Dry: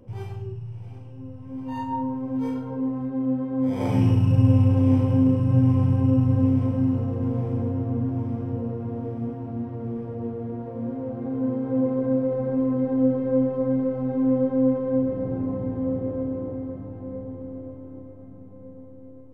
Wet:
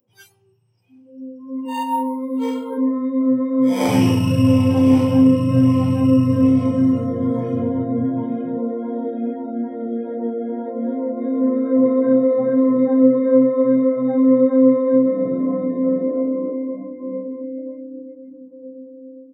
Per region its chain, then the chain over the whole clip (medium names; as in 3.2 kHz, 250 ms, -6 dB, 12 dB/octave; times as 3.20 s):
1.65–2.78 s: bass shelf 150 Hz -7 dB + comb 2.5 ms, depth 42% + decimation joined by straight lines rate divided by 4×
whole clip: spectral noise reduction 29 dB; high-pass 190 Hz 12 dB/octave; treble shelf 2.8 kHz +11.5 dB; trim +8.5 dB